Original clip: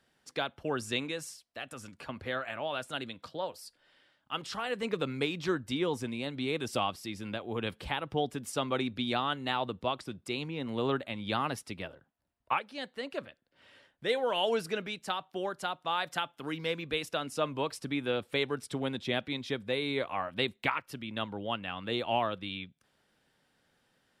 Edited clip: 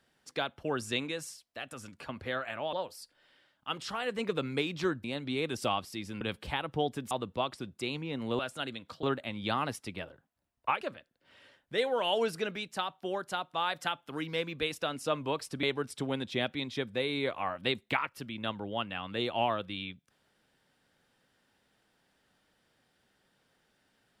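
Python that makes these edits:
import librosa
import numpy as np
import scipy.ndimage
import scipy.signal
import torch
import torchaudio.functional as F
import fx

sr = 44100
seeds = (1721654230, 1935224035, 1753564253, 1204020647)

y = fx.edit(x, sr, fx.move(start_s=2.73, length_s=0.64, to_s=10.86),
    fx.cut(start_s=5.68, length_s=0.47),
    fx.cut(start_s=7.32, length_s=0.27),
    fx.cut(start_s=8.49, length_s=1.09),
    fx.cut(start_s=12.64, length_s=0.48),
    fx.cut(start_s=17.94, length_s=0.42), tone=tone)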